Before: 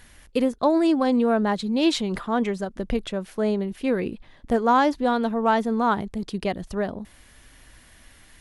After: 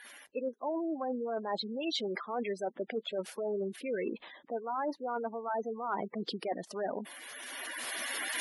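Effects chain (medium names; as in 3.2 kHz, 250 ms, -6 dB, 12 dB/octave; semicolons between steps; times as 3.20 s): coarse spectral quantiser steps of 15 dB; recorder AGC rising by 13 dB/s; high-pass 430 Hz 12 dB/octave; spectral gate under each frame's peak -15 dB strong; reverse; compression 12:1, threshold -35 dBFS, peak gain reduction 19.5 dB; reverse; trim +3.5 dB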